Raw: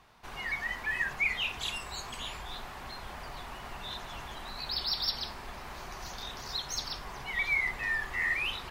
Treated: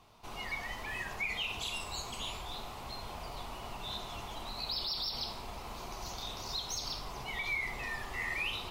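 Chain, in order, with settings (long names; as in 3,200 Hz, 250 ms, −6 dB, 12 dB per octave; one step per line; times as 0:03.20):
parametric band 1,700 Hz −12.5 dB 0.53 octaves
brickwall limiter −28 dBFS, peak gain reduction 10.5 dB
on a send: convolution reverb, pre-delay 3 ms, DRR 5.5 dB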